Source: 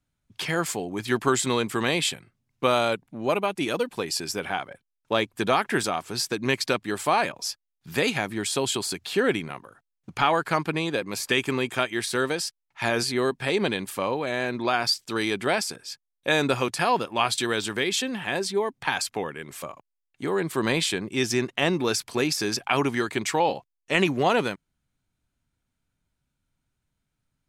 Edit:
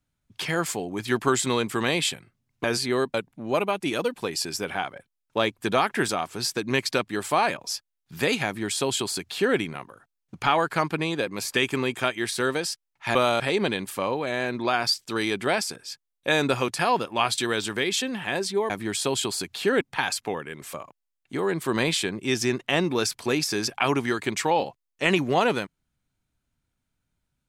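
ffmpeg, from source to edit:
-filter_complex "[0:a]asplit=7[a][b][c][d][e][f][g];[a]atrim=end=2.642[h];[b]atrim=start=12.898:end=13.402[i];[c]atrim=start=2.888:end=12.902[j];[d]atrim=start=2.638:end=2.892[k];[e]atrim=start=13.398:end=18.702[l];[f]atrim=start=8.208:end=9.322[m];[g]atrim=start=18.698[n];[h][i]acrossfade=d=0.004:c1=hsin:c2=hsin[o];[o][j]acrossfade=d=0.004:c1=hsin:c2=hsin[p];[p][k]acrossfade=d=0.004:c1=hsin:c2=hsin[q];[q][l]acrossfade=d=0.004:c1=hsin:c2=hsin[r];[r][m]acrossfade=d=0.004:c1=hsin:c2=hsin[s];[s][n]acrossfade=d=0.004:c1=hsin:c2=hsin"

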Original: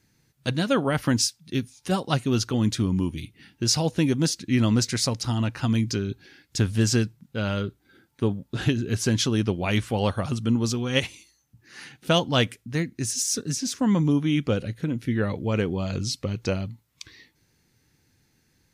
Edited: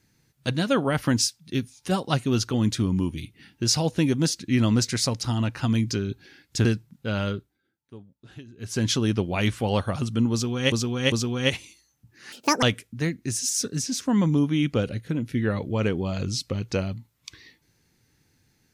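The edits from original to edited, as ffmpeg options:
-filter_complex "[0:a]asplit=8[a][b][c][d][e][f][g][h];[a]atrim=end=6.652[i];[b]atrim=start=6.948:end=7.9,asetpts=PTS-STARTPTS,afade=t=out:st=0.642:d=0.31:silence=0.1[j];[c]atrim=start=7.9:end=8.87,asetpts=PTS-STARTPTS,volume=-20dB[k];[d]atrim=start=8.87:end=11.022,asetpts=PTS-STARTPTS,afade=t=in:d=0.31:silence=0.1[l];[e]atrim=start=10.618:end=11.022[m];[f]atrim=start=10.618:end=11.824[n];[g]atrim=start=11.82:end=12.36,asetpts=PTS-STARTPTS,asetrate=77616,aresample=44100[o];[h]atrim=start=12.356[p];[j][k][l]concat=n=3:v=0:a=1[q];[i][q]acrossfade=d=0.004:c1=hsin:c2=hsin[r];[r][m]acrossfade=d=0.004:c1=hsin:c2=hsin[s];[s][n]acrossfade=d=0.004:c1=hsin:c2=hsin[t];[t][o]acrossfade=d=0.004:c1=hsin:c2=hsin[u];[u][p]acrossfade=d=0.004:c1=hsin:c2=hsin"

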